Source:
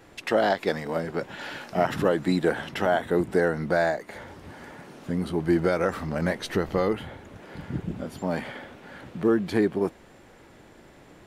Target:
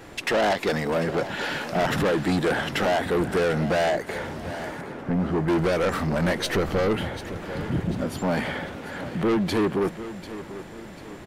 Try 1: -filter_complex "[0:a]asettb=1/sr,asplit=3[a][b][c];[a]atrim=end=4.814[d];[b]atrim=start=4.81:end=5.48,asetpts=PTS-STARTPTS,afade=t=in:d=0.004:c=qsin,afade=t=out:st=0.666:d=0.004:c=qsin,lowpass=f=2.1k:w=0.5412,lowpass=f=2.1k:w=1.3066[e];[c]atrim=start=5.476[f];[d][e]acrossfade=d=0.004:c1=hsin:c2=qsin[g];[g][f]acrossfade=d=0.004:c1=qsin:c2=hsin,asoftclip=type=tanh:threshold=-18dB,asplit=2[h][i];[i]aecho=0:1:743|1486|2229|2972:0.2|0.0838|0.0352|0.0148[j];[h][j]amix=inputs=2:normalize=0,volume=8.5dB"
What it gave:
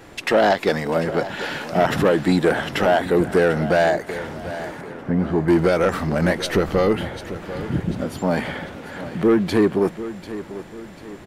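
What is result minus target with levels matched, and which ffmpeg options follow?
soft clip: distortion -8 dB
-filter_complex "[0:a]asettb=1/sr,asplit=3[a][b][c];[a]atrim=end=4.814[d];[b]atrim=start=4.81:end=5.48,asetpts=PTS-STARTPTS,afade=t=in:d=0.004:c=qsin,afade=t=out:st=0.666:d=0.004:c=qsin,lowpass=f=2.1k:w=0.5412,lowpass=f=2.1k:w=1.3066[e];[c]atrim=start=5.476[f];[d][e]acrossfade=d=0.004:c1=hsin:c2=qsin[g];[g][f]acrossfade=d=0.004:c1=qsin:c2=hsin,asoftclip=type=tanh:threshold=-27.5dB,asplit=2[h][i];[i]aecho=0:1:743|1486|2229|2972:0.2|0.0838|0.0352|0.0148[j];[h][j]amix=inputs=2:normalize=0,volume=8.5dB"

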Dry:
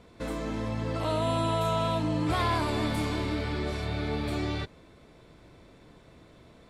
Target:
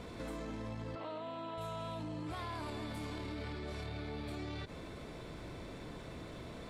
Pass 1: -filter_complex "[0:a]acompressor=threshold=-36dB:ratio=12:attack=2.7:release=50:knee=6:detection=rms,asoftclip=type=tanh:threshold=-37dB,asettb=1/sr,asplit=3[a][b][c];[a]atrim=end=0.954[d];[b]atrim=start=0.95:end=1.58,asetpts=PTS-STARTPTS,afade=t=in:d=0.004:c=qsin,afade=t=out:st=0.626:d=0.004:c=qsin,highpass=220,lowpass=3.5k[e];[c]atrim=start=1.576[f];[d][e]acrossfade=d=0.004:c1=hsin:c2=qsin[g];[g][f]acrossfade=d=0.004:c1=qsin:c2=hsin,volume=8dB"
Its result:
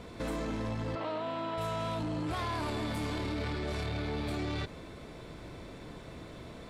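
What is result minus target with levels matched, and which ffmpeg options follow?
compressor: peak gain reduction -9.5 dB
-filter_complex "[0:a]acompressor=threshold=-46.5dB:ratio=12:attack=2.7:release=50:knee=6:detection=rms,asoftclip=type=tanh:threshold=-37dB,asettb=1/sr,asplit=3[a][b][c];[a]atrim=end=0.954[d];[b]atrim=start=0.95:end=1.58,asetpts=PTS-STARTPTS,afade=t=in:d=0.004:c=qsin,afade=t=out:st=0.626:d=0.004:c=qsin,highpass=220,lowpass=3.5k[e];[c]atrim=start=1.576[f];[d][e]acrossfade=d=0.004:c1=hsin:c2=qsin[g];[g][f]acrossfade=d=0.004:c1=qsin:c2=hsin,volume=8dB"

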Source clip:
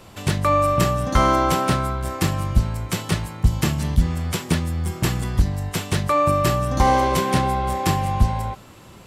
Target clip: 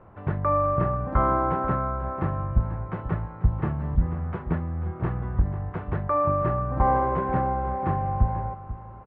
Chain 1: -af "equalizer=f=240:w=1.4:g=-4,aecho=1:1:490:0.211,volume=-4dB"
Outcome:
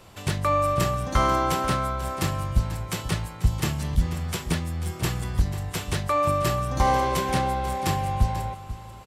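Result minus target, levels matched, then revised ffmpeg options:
2000 Hz band +6.0 dB
-af "lowpass=f=1.5k:w=0.5412,lowpass=f=1.5k:w=1.3066,equalizer=f=240:w=1.4:g=-4,aecho=1:1:490:0.211,volume=-4dB"

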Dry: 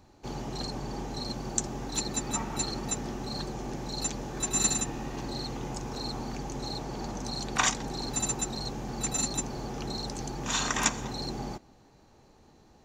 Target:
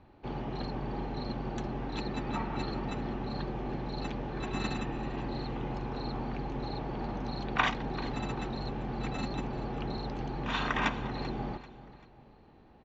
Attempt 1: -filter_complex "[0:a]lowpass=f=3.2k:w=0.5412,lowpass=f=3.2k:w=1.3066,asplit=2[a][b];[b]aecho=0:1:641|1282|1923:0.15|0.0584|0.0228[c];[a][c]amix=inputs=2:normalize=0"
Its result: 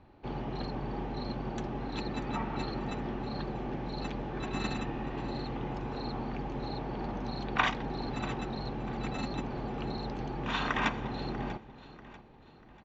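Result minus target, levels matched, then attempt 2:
echo 0.252 s late
-filter_complex "[0:a]lowpass=f=3.2k:w=0.5412,lowpass=f=3.2k:w=1.3066,asplit=2[a][b];[b]aecho=0:1:389|778|1167:0.15|0.0584|0.0228[c];[a][c]amix=inputs=2:normalize=0"

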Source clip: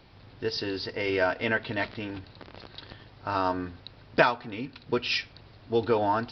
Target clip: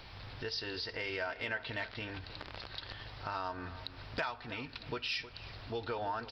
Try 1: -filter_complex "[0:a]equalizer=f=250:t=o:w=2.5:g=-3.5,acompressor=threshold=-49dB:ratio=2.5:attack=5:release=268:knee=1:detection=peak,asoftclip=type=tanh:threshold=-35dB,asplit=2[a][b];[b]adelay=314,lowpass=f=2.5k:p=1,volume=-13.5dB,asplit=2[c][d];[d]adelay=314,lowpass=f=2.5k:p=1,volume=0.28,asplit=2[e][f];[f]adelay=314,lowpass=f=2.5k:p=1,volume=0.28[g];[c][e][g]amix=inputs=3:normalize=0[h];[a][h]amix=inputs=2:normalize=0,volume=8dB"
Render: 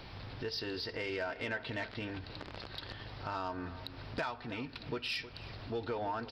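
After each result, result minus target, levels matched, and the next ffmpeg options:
soft clip: distortion +12 dB; 250 Hz band +4.5 dB
-filter_complex "[0:a]equalizer=f=250:t=o:w=2.5:g=-3.5,acompressor=threshold=-49dB:ratio=2.5:attack=5:release=268:knee=1:detection=peak,asoftclip=type=tanh:threshold=-27.5dB,asplit=2[a][b];[b]adelay=314,lowpass=f=2.5k:p=1,volume=-13.5dB,asplit=2[c][d];[d]adelay=314,lowpass=f=2.5k:p=1,volume=0.28,asplit=2[e][f];[f]adelay=314,lowpass=f=2.5k:p=1,volume=0.28[g];[c][e][g]amix=inputs=3:normalize=0[h];[a][h]amix=inputs=2:normalize=0,volume=8dB"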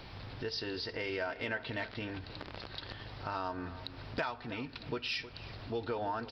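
250 Hz band +4.0 dB
-filter_complex "[0:a]equalizer=f=250:t=o:w=2.5:g=-11,acompressor=threshold=-49dB:ratio=2.5:attack=5:release=268:knee=1:detection=peak,asoftclip=type=tanh:threshold=-27.5dB,asplit=2[a][b];[b]adelay=314,lowpass=f=2.5k:p=1,volume=-13.5dB,asplit=2[c][d];[d]adelay=314,lowpass=f=2.5k:p=1,volume=0.28,asplit=2[e][f];[f]adelay=314,lowpass=f=2.5k:p=1,volume=0.28[g];[c][e][g]amix=inputs=3:normalize=0[h];[a][h]amix=inputs=2:normalize=0,volume=8dB"

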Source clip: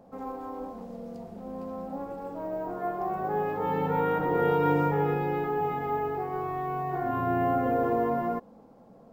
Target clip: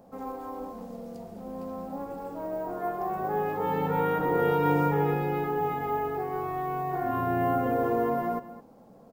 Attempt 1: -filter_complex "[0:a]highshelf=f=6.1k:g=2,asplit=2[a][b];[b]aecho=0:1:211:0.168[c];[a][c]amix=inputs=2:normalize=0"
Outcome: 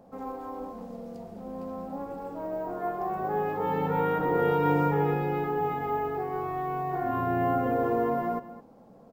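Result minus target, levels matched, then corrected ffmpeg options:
8000 Hz band -4.5 dB
-filter_complex "[0:a]highshelf=f=6.1k:g=9,asplit=2[a][b];[b]aecho=0:1:211:0.168[c];[a][c]amix=inputs=2:normalize=0"

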